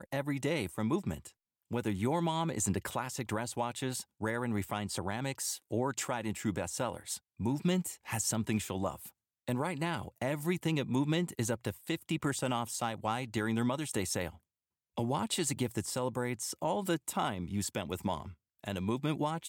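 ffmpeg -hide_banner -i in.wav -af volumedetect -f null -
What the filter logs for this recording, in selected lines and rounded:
mean_volume: -34.8 dB
max_volume: -20.3 dB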